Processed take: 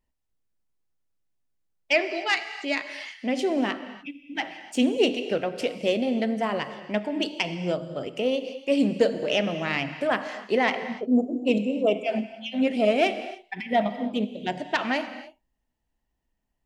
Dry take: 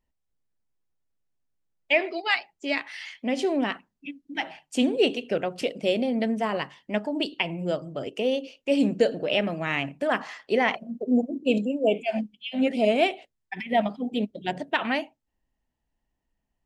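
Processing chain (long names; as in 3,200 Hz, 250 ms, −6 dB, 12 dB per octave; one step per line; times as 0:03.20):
phase distortion by the signal itself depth 0.051 ms
reverb whose tail is shaped and stops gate 320 ms flat, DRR 10 dB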